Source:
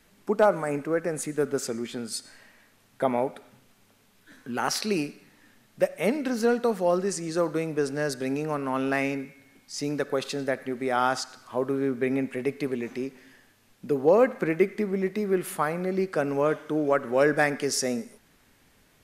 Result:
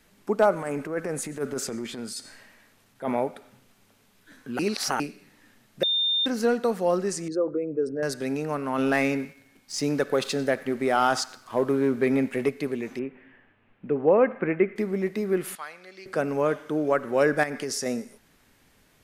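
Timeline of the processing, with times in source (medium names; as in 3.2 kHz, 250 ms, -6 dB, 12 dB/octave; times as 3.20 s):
0.54–3.15 s: transient shaper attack -11 dB, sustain +3 dB
4.59–5.00 s: reverse
5.83–6.26 s: bleep 3.62 kHz -21 dBFS
7.28–8.03 s: resonances exaggerated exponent 2
8.78–12.49 s: waveshaping leveller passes 1
12.99–14.76 s: steep low-pass 2.8 kHz
15.55–16.06 s: band-pass filter 3.9 kHz, Q 1.1
17.43–17.86 s: compression, threshold -26 dBFS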